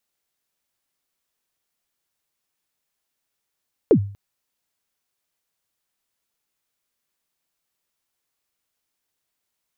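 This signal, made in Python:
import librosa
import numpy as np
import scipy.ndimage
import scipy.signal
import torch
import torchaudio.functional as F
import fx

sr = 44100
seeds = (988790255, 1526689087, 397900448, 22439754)

y = fx.drum_kick(sr, seeds[0], length_s=0.24, level_db=-7, start_hz=510.0, end_hz=100.0, sweep_ms=81.0, decay_s=0.44, click=False)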